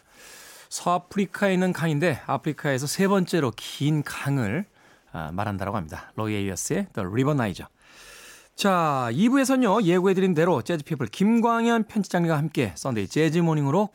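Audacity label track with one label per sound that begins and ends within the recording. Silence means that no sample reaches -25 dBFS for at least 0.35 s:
0.730000	4.610000	sound
5.150000	7.610000	sound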